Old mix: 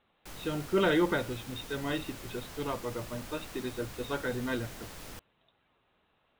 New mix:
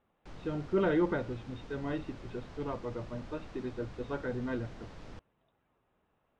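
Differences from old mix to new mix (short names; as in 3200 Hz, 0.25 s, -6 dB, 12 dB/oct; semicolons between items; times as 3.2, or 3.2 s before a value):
background: add tone controls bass +1 dB, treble +12 dB; master: add tape spacing loss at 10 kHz 41 dB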